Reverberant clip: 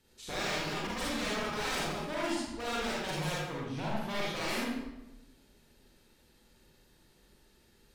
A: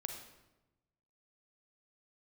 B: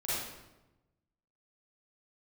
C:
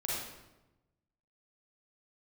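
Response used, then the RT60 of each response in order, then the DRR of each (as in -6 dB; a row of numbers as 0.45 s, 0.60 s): C; 1.0 s, 1.0 s, 1.0 s; 4.0 dB, -11.0 dB, -6.0 dB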